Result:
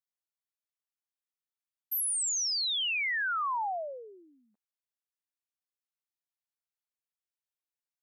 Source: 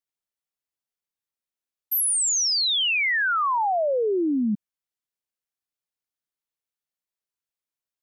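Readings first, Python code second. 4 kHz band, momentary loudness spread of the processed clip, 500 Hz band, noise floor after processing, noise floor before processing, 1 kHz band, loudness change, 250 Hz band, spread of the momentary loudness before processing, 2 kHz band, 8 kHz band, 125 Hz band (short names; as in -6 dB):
-8.0 dB, 10 LU, -17.5 dB, under -85 dBFS, under -85 dBFS, -8.5 dB, -7.5 dB, under -35 dB, 6 LU, -8.0 dB, -8.0 dB, n/a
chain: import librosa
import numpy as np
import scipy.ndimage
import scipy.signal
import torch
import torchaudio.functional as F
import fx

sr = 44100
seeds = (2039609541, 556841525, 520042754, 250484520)

y = scipy.signal.sosfilt(scipy.signal.butter(4, 710.0, 'highpass', fs=sr, output='sos'), x)
y = y * 10.0 ** (-8.0 / 20.0)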